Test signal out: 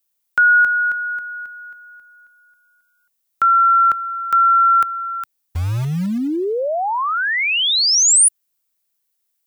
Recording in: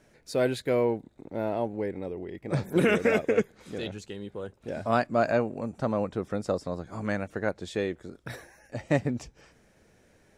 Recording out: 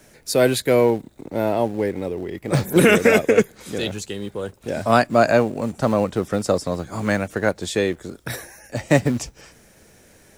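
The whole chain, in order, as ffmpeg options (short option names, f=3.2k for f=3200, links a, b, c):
-filter_complex "[0:a]aemphasis=mode=production:type=50kf,acrossover=split=190|860[a][b][c];[a]acrusher=bits=3:mode=log:mix=0:aa=0.000001[d];[d][b][c]amix=inputs=3:normalize=0,volume=8.5dB"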